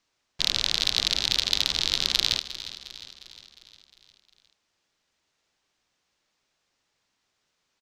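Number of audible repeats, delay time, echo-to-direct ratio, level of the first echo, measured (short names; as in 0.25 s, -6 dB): 5, 0.356 s, -12.5 dB, -14.0 dB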